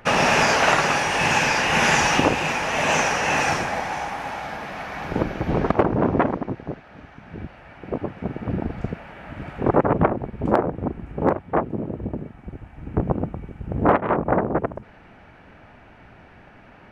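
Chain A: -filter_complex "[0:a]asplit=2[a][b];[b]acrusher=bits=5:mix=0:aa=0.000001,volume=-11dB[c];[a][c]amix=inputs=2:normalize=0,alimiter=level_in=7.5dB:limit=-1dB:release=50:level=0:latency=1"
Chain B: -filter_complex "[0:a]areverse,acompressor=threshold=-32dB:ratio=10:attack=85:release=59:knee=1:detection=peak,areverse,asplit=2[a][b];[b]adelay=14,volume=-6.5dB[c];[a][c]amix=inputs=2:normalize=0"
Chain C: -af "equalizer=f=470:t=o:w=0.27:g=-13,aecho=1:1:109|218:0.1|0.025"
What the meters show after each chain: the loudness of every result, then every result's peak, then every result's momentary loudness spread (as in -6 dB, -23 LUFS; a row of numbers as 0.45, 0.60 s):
-14.0, -28.5, -23.0 LUFS; -1.0, -8.0, -2.5 dBFS; 17, 21, 19 LU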